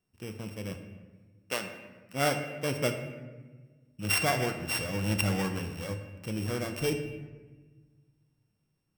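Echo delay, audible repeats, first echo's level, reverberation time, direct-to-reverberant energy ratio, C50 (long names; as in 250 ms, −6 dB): no echo audible, no echo audible, no echo audible, 1.3 s, 5.5 dB, 8.0 dB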